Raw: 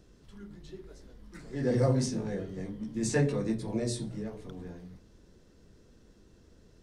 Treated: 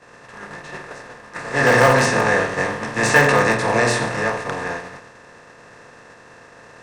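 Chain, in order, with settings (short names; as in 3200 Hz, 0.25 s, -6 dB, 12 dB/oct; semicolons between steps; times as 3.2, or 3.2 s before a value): per-bin compression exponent 0.4; expander -23 dBFS; EQ curve 590 Hz 0 dB, 950 Hz +13 dB, 8900 Hz +5 dB; in parallel at -9 dB: wrapped overs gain 13.5 dB; on the sum: band shelf 1200 Hz +9 dB 3 oct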